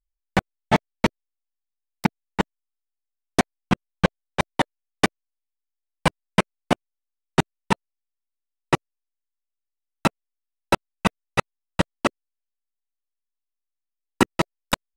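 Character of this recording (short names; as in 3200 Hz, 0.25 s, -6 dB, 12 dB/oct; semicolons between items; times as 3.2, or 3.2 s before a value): noise floor -84 dBFS; spectral tilt -5.0 dB/oct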